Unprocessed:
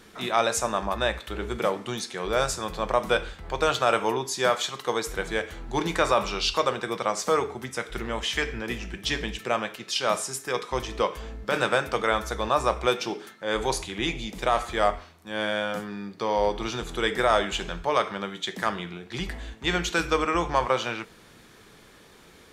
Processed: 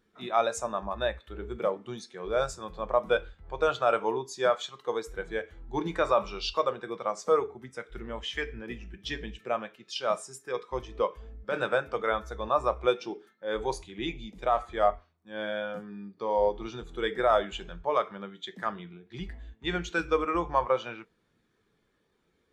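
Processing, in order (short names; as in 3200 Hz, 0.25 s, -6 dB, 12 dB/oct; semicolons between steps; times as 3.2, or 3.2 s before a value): spectral expander 1.5:1; gain -2.5 dB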